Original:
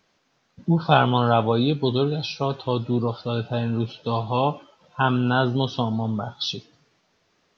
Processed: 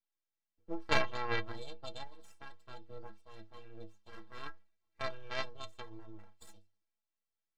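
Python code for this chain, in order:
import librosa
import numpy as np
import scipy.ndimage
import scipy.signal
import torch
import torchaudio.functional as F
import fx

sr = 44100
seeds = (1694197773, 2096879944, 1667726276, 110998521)

y = fx.cheby_harmonics(x, sr, harmonics=(3, 6, 8), levels_db=(-10, -42, -36), full_scale_db=-2.0)
y = np.abs(y)
y = fx.stiff_resonator(y, sr, f0_hz=98.0, decay_s=0.28, stiffness=0.03)
y = y * librosa.db_to_amplitude(4.0)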